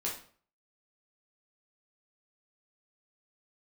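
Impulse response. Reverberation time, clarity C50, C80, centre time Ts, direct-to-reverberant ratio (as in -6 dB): 0.45 s, 6.0 dB, 11.5 dB, 30 ms, -4.5 dB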